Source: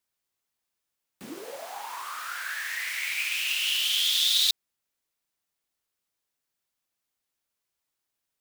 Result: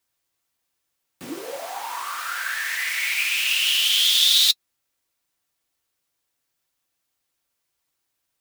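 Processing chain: comb of notches 210 Hz; trim +7.5 dB

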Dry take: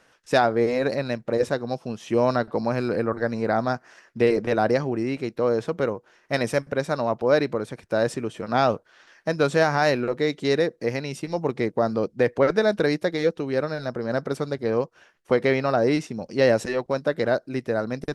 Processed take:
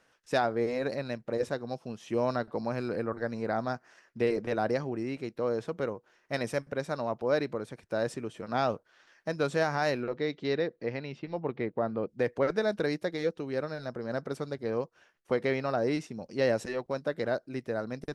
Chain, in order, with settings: 10.03–12.07 s: low-pass 5.5 kHz -> 3 kHz 24 dB/octave; trim -8 dB

